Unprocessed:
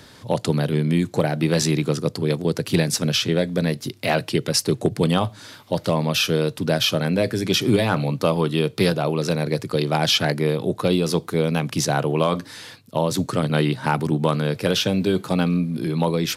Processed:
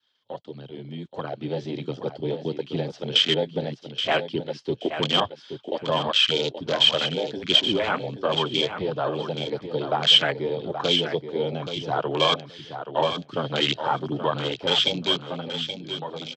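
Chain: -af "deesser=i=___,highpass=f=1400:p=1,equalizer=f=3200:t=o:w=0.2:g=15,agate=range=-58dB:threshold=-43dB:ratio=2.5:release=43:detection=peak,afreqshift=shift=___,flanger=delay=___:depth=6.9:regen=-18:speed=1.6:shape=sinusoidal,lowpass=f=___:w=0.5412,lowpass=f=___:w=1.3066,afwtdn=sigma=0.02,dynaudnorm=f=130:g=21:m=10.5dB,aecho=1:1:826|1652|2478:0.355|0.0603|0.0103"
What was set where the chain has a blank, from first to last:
0.8, -13, 0.7, 5500, 5500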